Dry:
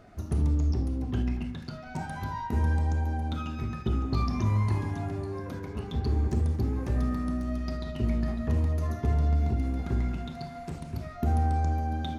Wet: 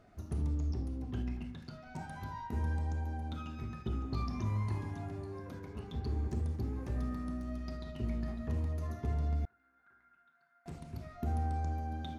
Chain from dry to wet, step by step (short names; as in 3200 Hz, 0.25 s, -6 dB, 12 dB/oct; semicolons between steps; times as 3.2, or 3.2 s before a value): 9.45–10.66 band-pass 1500 Hz, Q 13; gain -8.5 dB